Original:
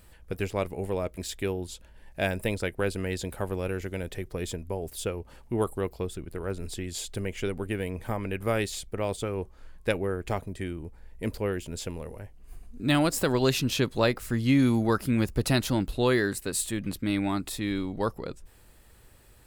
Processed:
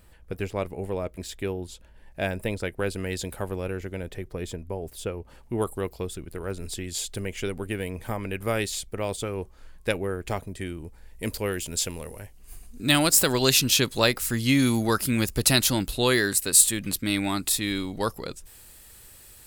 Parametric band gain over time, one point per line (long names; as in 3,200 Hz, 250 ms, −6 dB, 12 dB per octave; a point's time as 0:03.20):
parametric band 13,000 Hz 2.9 octaves
0:02.51 −2.5 dB
0:03.24 +5.5 dB
0:03.79 −3.5 dB
0:05.13 −3.5 dB
0:05.75 +5.5 dB
0:10.56 +5.5 dB
0:11.48 +14.5 dB